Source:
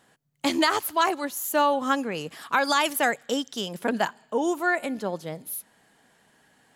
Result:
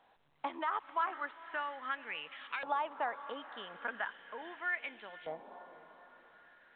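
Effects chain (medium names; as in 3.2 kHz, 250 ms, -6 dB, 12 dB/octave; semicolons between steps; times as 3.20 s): compression 4:1, threshold -26 dBFS, peak gain reduction 8.5 dB; on a send: echo that smears into a reverb 505 ms, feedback 52%, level -14 dB; on the sum: LFO band-pass saw up 0.38 Hz 800–2700 Hz; A-law 64 kbps 8 kHz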